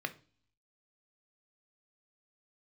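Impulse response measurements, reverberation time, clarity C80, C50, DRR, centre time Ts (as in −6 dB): non-exponential decay, 23.5 dB, 17.0 dB, 8.0 dB, 4 ms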